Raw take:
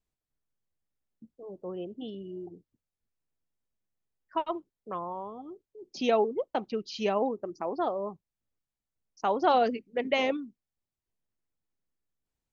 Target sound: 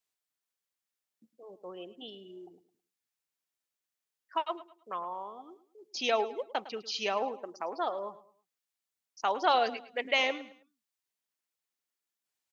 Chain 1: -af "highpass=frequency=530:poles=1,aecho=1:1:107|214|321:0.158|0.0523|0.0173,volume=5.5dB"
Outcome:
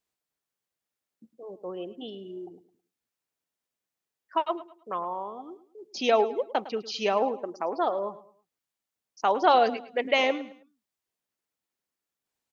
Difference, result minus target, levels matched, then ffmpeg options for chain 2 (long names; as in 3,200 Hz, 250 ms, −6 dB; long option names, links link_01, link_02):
2,000 Hz band −3.0 dB
-af "highpass=frequency=1700:poles=1,aecho=1:1:107|214|321:0.158|0.0523|0.0173,volume=5.5dB"